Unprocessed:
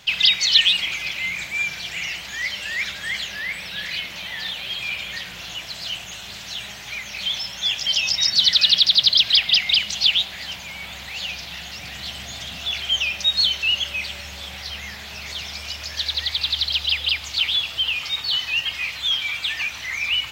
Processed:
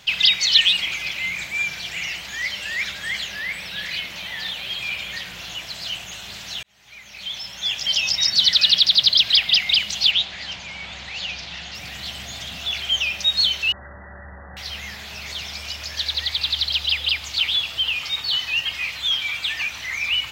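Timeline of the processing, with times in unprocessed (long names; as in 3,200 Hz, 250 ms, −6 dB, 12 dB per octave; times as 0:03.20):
0:06.63–0:07.92: fade in
0:10.11–0:11.75: low-pass filter 6,700 Hz 24 dB per octave
0:13.72–0:14.57: linear-phase brick-wall low-pass 2,000 Hz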